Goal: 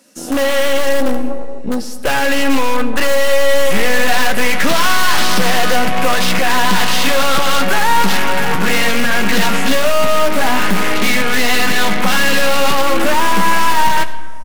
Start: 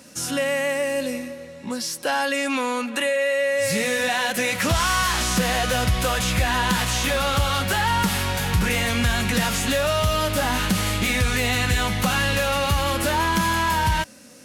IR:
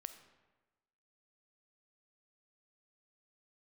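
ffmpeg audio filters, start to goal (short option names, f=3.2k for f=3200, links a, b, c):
-filter_complex "[0:a]highpass=f=200:w=0.5412,highpass=f=200:w=1.3066,bandreject=f=2.4k:w=29,afwtdn=0.0355,asplit=2[a][b];[b]aeval=exprs='(mod(13.3*val(0)+1,2)-1)/13.3':c=same,volume=-8dB[c];[a][c]amix=inputs=2:normalize=0,aeval=exprs='(tanh(17.8*val(0)+0.75)-tanh(0.75))/17.8':c=same,asplit=2[d][e];[e]adelay=15,volume=-10.5dB[f];[d][f]amix=inputs=2:normalize=0,asplit=2[g][h];[1:a]atrim=start_sample=2205,asetrate=29547,aresample=44100,highshelf=f=10k:g=5.5[i];[h][i]afir=irnorm=-1:irlink=0,volume=8dB[j];[g][j]amix=inputs=2:normalize=0,volume=4dB"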